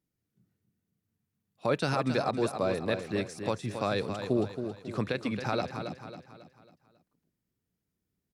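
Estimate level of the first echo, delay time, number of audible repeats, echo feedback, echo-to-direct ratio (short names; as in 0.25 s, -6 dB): -8.0 dB, 0.273 s, 4, 43%, -7.0 dB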